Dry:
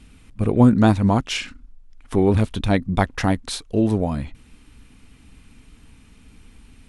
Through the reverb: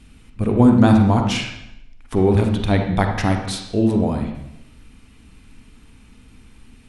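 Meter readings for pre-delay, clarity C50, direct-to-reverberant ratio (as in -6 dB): 38 ms, 4.5 dB, 3.5 dB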